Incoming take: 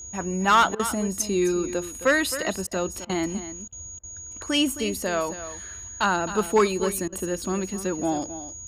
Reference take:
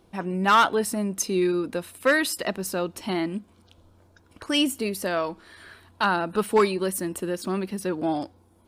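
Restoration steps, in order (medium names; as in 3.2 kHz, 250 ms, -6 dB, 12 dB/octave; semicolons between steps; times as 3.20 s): band-stop 6.7 kHz, Q 30; interpolate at 0.75/2.67/3.05/3.68/3.99/7.08 s, 43 ms; noise print and reduce 18 dB; inverse comb 264 ms -12.5 dB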